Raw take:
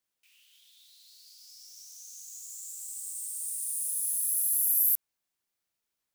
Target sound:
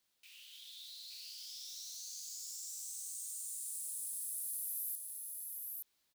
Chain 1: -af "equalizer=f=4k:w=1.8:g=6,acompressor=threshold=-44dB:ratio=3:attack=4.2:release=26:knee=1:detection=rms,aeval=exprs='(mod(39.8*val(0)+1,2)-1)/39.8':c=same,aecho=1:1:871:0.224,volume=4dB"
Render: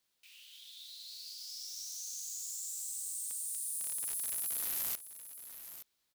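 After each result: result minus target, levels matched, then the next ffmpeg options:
echo-to-direct -9.5 dB; compressor: peak gain reduction -5.5 dB
-af "equalizer=f=4k:w=1.8:g=6,acompressor=threshold=-44dB:ratio=3:attack=4.2:release=26:knee=1:detection=rms,aeval=exprs='(mod(39.8*val(0)+1,2)-1)/39.8':c=same,aecho=1:1:871:0.668,volume=4dB"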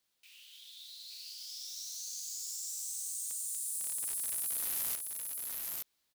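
compressor: peak gain reduction -5.5 dB
-af "equalizer=f=4k:w=1.8:g=6,acompressor=threshold=-52dB:ratio=3:attack=4.2:release=26:knee=1:detection=rms,aeval=exprs='(mod(39.8*val(0)+1,2)-1)/39.8':c=same,aecho=1:1:871:0.668,volume=4dB"

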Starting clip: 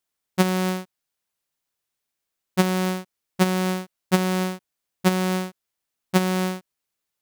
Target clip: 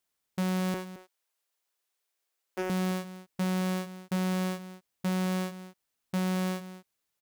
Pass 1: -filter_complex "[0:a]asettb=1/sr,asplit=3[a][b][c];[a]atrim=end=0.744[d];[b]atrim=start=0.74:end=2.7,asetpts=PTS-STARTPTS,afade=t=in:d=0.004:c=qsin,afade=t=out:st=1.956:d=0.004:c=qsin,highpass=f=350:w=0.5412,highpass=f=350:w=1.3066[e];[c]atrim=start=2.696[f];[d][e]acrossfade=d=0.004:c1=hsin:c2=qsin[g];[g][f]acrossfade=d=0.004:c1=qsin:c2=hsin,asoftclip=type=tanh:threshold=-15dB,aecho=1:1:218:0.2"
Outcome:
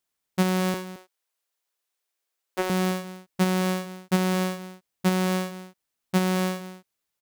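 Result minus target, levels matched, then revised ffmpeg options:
soft clip: distortion -8 dB
-filter_complex "[0:a]asettb=1/sr,asplit=3[a][b][c];[a]atrim=end=0.744[d];[b]atrim=start=0.74:end=2.7,asetpts=PTS-STARTPTS,afade=t=in:d=0.004:c=qsin,afade=t=out:st=1.956:d=0.004:c=qsin,highpass=f=350:w=0.5412,highpass=f=350:w=1.3066[e];[c]atrim=start=2.696[f];[d][e]acrossfade=d=0.004:c1=hsin:c2=qsin[g];[g][f]acrossfade=d=0.004:c1=qsin:c2=hsin,asoftclip=type=tanh:threshold=-26.5dB,aecho=1:1:218:0.2"

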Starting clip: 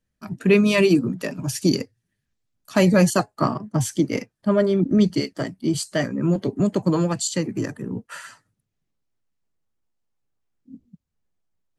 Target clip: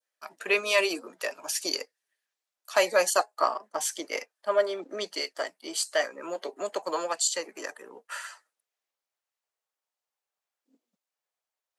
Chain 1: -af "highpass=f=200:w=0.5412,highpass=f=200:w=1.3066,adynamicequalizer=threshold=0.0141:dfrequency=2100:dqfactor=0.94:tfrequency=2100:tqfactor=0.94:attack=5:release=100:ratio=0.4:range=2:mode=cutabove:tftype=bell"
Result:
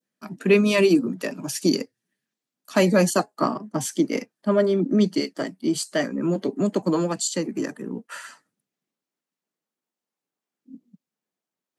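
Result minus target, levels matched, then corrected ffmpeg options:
250 Hz band +15.0 dB
-af "highpass=f=550:w=0.5412,highpass=f=550:w=1.3066,adynamicequalizer=threshold=0.0141:dfrequency=2100:dqfactor=0.94:tfrequency=2100:tqfactor=0.94:attack=5:release=100:ratio=0.4:range=2:mode=cutabove:tftype=bell"

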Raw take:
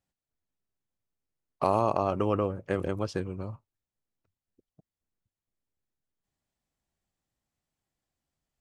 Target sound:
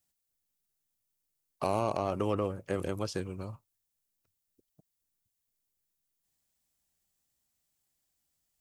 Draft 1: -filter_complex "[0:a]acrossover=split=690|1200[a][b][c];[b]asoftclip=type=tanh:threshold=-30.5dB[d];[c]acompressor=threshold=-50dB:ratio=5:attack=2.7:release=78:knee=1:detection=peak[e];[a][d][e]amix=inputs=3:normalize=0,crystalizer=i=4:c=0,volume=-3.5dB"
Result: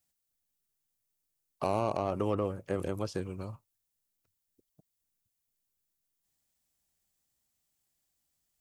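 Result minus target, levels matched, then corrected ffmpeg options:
compressor: peak gain reduction +5 dB
-filter_complex "[0:a]acrossover=split=690|1200[a][b][c];[b]asoftclip=type=tanh:threshold=-30.5dB[d];[c]acompressor=threshold=-44dB:ratio=5:attack=2.7:release=78:knee=1:detection=peak[e];[a][d][e]amix=inputs=3:normalize=0,crystalizer=i=4:c=0,volume=-3.5dB"

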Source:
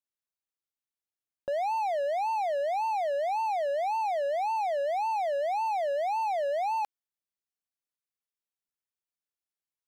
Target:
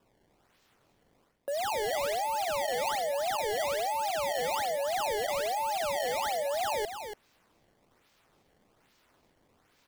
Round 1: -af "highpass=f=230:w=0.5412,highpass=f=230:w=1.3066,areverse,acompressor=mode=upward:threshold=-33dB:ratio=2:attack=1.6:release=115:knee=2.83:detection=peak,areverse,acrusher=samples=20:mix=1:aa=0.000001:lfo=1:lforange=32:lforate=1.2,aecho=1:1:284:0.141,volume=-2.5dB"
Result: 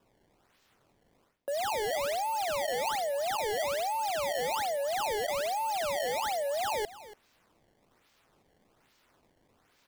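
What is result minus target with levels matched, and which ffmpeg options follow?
echo-to-direct -8.5 dB
-af "highpass=f=230:w=0.5412,highpass=f=230:w=1.3066,areverse,acompressor=mode=upward:threshold=-33dB:ratio=2:attack=1.6:release=115:knee=2.83:detection=peak,areverse,acrusher=samples=20:mix=1:aa=0.000001:lfo=1:lforange=32:lforate=1.2,aecho=1:1:284:0.376,volume=-2.5dB"

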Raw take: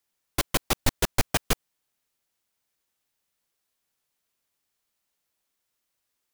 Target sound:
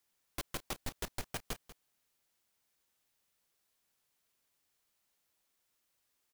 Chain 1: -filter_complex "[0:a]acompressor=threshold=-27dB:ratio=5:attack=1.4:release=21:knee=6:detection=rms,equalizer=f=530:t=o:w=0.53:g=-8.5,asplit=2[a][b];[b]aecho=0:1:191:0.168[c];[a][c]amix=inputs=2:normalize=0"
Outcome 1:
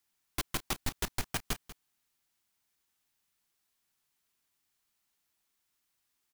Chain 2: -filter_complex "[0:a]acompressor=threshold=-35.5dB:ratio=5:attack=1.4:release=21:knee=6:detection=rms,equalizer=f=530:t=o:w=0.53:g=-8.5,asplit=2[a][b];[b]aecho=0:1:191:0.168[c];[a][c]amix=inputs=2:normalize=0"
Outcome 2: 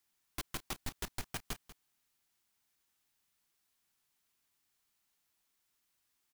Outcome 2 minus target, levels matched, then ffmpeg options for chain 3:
500 Hz band -4.0 dB
-filter_complex "[0:a]acompressor=threshold=-35.5dB:ratio=5:attack=1.4:release=21:knee=6:detection=rms,asplit=2[a][b];[b]aecho=0:1:191:0.168[c];[a][c]amix=inputs=2:normalize=0"

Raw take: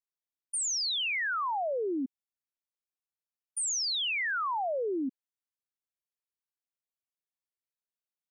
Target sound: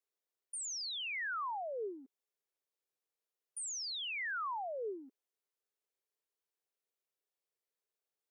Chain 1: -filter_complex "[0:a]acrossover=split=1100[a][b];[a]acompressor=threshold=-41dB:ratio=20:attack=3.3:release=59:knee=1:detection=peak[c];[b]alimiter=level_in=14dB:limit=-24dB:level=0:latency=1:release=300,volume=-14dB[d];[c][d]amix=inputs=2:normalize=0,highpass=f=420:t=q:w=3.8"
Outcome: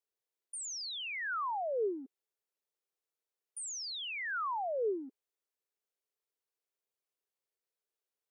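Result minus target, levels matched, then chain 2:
compressor: peak gain reduction -8.5 dB
-filter_complex "[0:a]acrossover=split=1100[a][b];[a]acompressor=threshold=-50dB:ratio=20:attack=3.3:release=59:knee=1:detection=peak[c];[b]alimiter=level_in=14dB:limit=-24dB:level=0:latency=1:release=300,volume=-14dB[d];[c][d]amix=inputs=2:normalize=0,highpass=f=420:t=q:w=3.8"

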